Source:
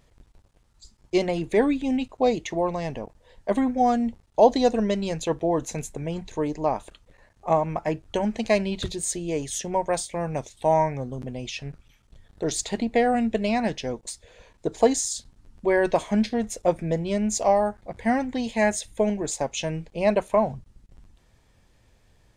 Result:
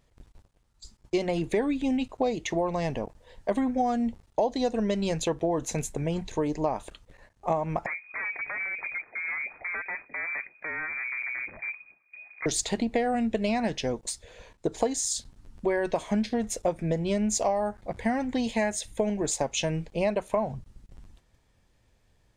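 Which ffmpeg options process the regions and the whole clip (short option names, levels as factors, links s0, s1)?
-filter_complex "[0:a]asettb=1/sr,asplit=3[s0][s1][s2];[s0]atrim=end=7.864[s3];[s1]atrim=start=7.86:end=12.46,asetpts=PTS-STARTPTS,afade=t=in:d=0.004:c=qsin,afade=t=out:st=4.596:d=0.004:c=qsin,acompressor=threshold=0.0398:ratio=4:attack=3.2:release=140:knee=1:detection=peak,aeval=exprs='0.0335*(abs(mod(val(0)/0.0335+3,4)-2)-1)':c=same,lowpass=f=2100:t=q:w=0.5098,lowpass=f=2100:t=q:w=0.6013,lowpass=f=2100:t=q:w=0.9,lowpass=f=2100:t=q:w=2.563,afreqshift=-2500[s4];[s2]atrim=start=12.456[s5];[s3][s4]acrossfade=d=0.004:c1=hsin:c2=qsin[s6];[s6][s5]acrossfade=d=0.004:c1=qsin:c2=hsin,agate=range=0.398:threshold=0.00178:ratio=16:detection=peak,acompressor=threshold=0.0562:ratio=6,volume=1.26"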